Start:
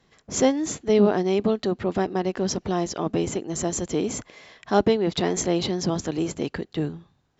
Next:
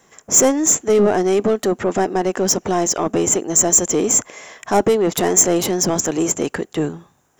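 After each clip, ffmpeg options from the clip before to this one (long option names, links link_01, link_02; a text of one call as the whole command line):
ffmpeg -i in.wav -filter_complex "[0:a]acontrast=51,asplit=2[link_01][link_02];[link_02]highpass=frequency=720:poles=1,volume=16dB,asoftclip=type=tanh:threshold=-3.5dB[link_03];[link_01][link_03]amix=inputs=2:normalize=0,lowpass=frequency=1300:poles=1,volume=-6dB,aexciter=amount=15.9:drive=5.7:freq=6500,volume=-2dB" out.wav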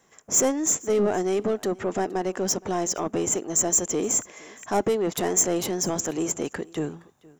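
ffmpeg -i in.wav -af "aecho=1:1:468:0.0668,volume=-8dB" out.wav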